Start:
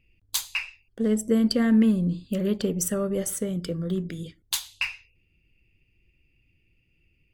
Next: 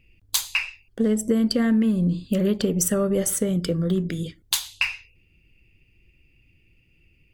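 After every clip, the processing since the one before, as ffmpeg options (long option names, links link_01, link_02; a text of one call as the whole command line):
ffmpeg -i in.wav -af "acompressor=threshold=-24dB:ratio=6,volume=6.5dB" out.wav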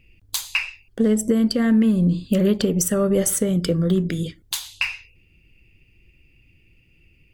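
ffmpeg -i in.wav -af "alimiter=limit=-12.5dB:level=0:latency=1:release=255,volume=3.5dB" out.wav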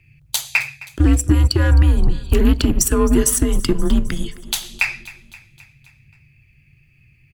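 ffmpeg -i in.wav -af "aeval=exprs='0.376*(cos(1*acos(clip(val(0)/0.376,-1,1)))-cos(1*PI/2))+0.015*(cos(7*acos(clip(val(0)/0.376,-1,1)))-cos(7*PI/2))':channel_layout=same,afreqshift=-150,aecho=1:1:263|526|789|1052|1315:0.112|0.0662|0.0391|0.023|0.0136,volume=5dB" out.wav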